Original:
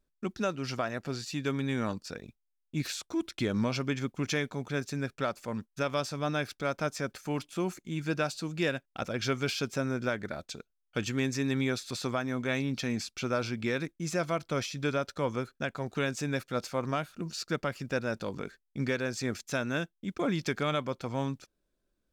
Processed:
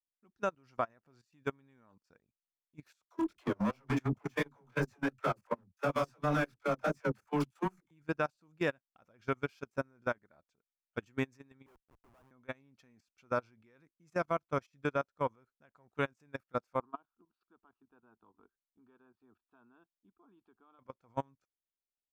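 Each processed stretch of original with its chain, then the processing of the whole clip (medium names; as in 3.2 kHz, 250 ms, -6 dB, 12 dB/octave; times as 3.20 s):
3.05–7.91 s: waveshaping leveller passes 3 + chorus 2.8 Hz, delay 20 ms, depth 4.8 ms + phase dispersion lows, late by 89 ms, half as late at 320 Hz
11.66–12.31 s: three-band isolator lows -23 dB, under 330 Hz, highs -24 dB, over 2.2 kHz + upward compressor, threshold -42 dBFS + Schmitt trigger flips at -41.5 dBFS
16.80–20.79 s: inverse Chebyshev low-pass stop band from 6.3 kHz + static phaser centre 550 Hz, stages 6
whole clip: graphic EQ 1/4/8 kHz +7/-7/-4 dB; level held to a coarse grid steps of 14 dB; upward expansion 2.5:1, over -44 dBFS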